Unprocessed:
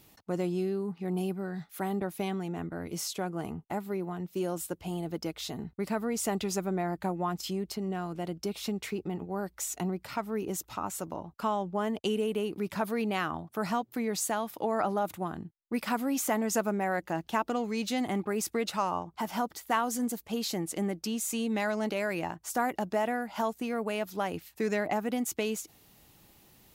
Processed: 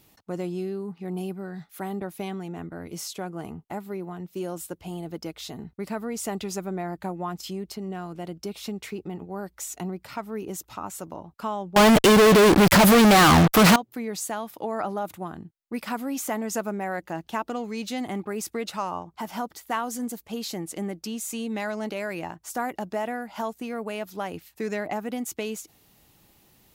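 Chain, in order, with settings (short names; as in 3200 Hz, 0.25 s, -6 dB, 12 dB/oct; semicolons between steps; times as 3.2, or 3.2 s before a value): 11.76–13.76 fuzz box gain 55 dB, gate -51 dBFS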